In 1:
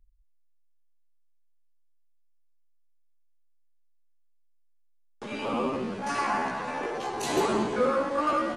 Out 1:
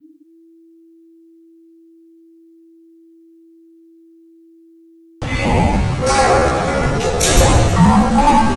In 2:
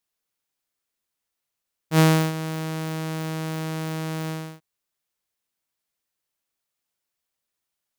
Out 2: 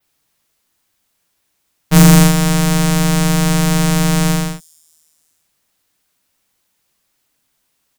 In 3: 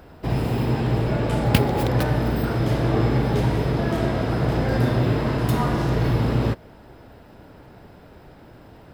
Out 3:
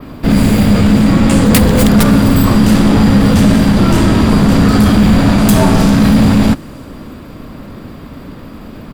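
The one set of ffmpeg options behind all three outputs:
ffmpeg -i in.wav -filter_complex "[0:a]adynamicequalizer=threshold=0.00224:dfrequency=8200:dqfactor=0.98:tfrequency=8200:tqfactor=0.98:attack=5:release=100:ratio=0.375:range=3.5:mode=boostabove:tftype=bell,acrossover=split=5900[link_01][link_02];[link_01]asoftclip=type=tanh:threshold=-18dB[link_03];[link_02]aecho=1:1:315|630|945:0.1|0.043|0.0185[link_04];[link_03][link_04]amix=inputs=2:normalize=0,afreqshift=-330,apsyclip=17.5dB,volume=-1.5dB" out.wav

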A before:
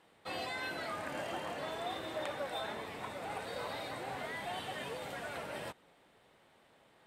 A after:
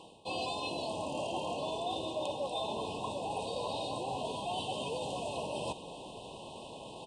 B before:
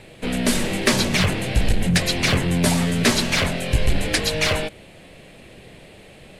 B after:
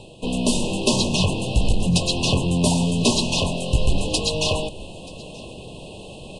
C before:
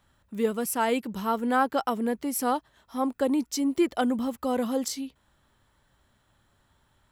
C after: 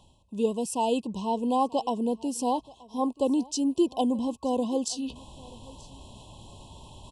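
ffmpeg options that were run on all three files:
ffmpeg -i in.wav -af "afftfilt=real='re*(1-between(b*sr/4096,1100,2500))':imag='im*(1-between(b*sr/4096,1100,2500))':win_size=4096:overlap=0.75,areverse,acompressor=mode=upward:threshold=-29dB:ratio=2.5,areverse,aecho=1:1:930:0.075,aresample=22050,aresample=44100" out.wav

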